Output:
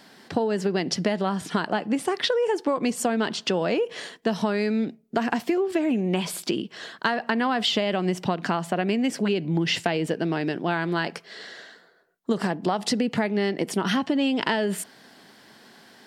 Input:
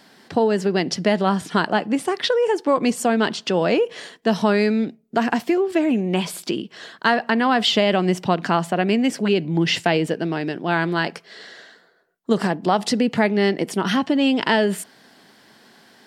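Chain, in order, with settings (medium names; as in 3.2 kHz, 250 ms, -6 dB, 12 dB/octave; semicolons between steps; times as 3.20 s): compression, threshold -20 dBFS, peak gain reduction 8 dB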